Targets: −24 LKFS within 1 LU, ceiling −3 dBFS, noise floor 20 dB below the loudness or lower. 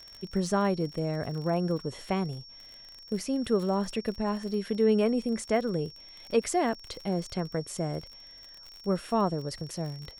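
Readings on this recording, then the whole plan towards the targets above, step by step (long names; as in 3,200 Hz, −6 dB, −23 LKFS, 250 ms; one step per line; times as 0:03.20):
crackle rate 44 per second; interfering tone 5,500 Hz; level of the tone −47 dBFS; integrated loudness −30.0 LKFS; sample peak −13.0 dBFS; target loudness −24.0 LKFS
→ click removal
notch filter 5,500 Hz, Q 30
level +6 dB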